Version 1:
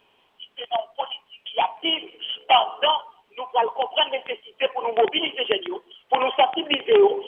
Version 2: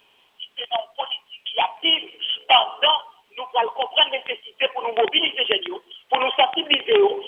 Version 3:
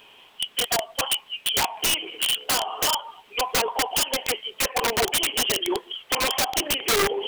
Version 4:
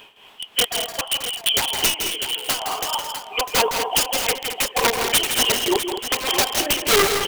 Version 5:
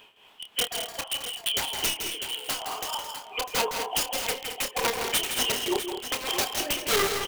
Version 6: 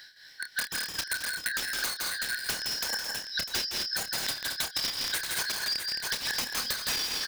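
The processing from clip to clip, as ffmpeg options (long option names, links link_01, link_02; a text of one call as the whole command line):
ffmpeg -i in.wav -af "highshelf=frequency=2000:gain=10,volume=-1.5dB" out.wav
ffmpeg -i in.wav -filter_complex "[0:a]asplit=2[link_01][link_02];[link_02]alimiter=limit=-11.5dB:level=0:latency=1:release=112,volume=3dB[link_03];[link_01][link_03]amix=inputs=2:normalize=0,acompressor=threshold=-18dB:ratio=12,aeval=exprs='(mod(6.31*val(0)+1,2)-1)/6.31':channel_layout=same" out.wav
ffmpeg -i in.wav -af "acrusher=bits=9:mode=log:mix=0:aa=0.000001,tremolo=f=3.3:d=0.79,aecho=1:1:163|217|650:0.422|0.316|0.299,volume=6dB" out.wav
ffmpeg -i in.wav -filter_complex "[0:a]asplit=2[link_01][link_02];[link_02]adelay=28,volume=-9.5dB[link_03];[link_01][link_03]amix=inputs=2:normalize=0,volume=-8dB" out.wav
ffmpeg -i in.wav -af "afftfilt=real='real(if(lt(b,272),68*(eq(floor(b/68),0)*3+eq(floor(b/68),1)*2+eq(floor(b/68),2)*1+eq(floor(b/68),3)*0)+mod(b,68),b),0)':imag='imag(if(lt(b,272),68*(eq(floor(b/68),0)*3+eq(floor(b/68),1)*2+eq(floor(b/68),2)*1+eq(floor(b/68),3)*0)+mod(b,68),b),0)':win_size=2048:overlap=0.75,alimiter=limit=-14.5dB:level=0:latency=1:release=481,acompressor=threshold=-32dB:ratio=6,volume=4dB" out.wav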